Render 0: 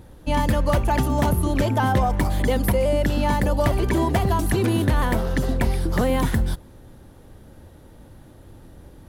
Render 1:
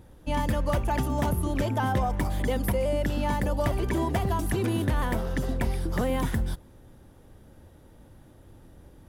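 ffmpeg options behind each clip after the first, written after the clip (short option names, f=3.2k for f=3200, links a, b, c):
-af "bandreject=f=4.2k:w=15,volume=-6dB"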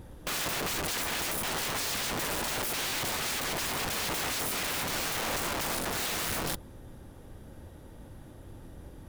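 -af "aeval=exprs='(mod(37.6*val(0)+1,2)-1)/37.6':c=same,volume=4dB"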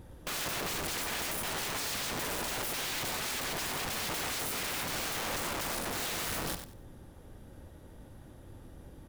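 -af "aecho=1:1:94|188|282:0.355|0.0745|0.0156,volume=-3.5dB"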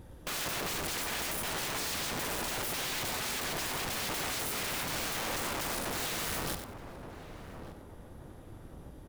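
-filter_complex "[0:a]asplit=2[a][b];[b]adelay=1173,lowpass=f=810:p=1,volume=-8dB,asplit=2[c][d];[d]adelay=1173,lowpass=f=810:p=1,volume=0.5,asplit=2[e][f];[f]adelay=1173,lowpass=f=810:p=1,volume=0.5,asplit=2[g][h];[h]adelay=1173,lowpass=f=810:p=1,volume=0.5,asplit=2[i][j];[j]adelay=1173,lowpass=f=810:p=1,volume=0.5,asplit=2[k][l];[l]adelay=1173,lowpass=f=810:p=1,volume=0.5[m];[a][c][e][g][i][k][m]amix=inputs=7:normalize=0"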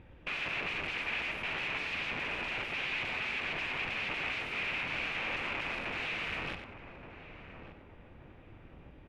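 -af "lowpass=f=2.5k:t=q:w=5.3,volume=-5dB"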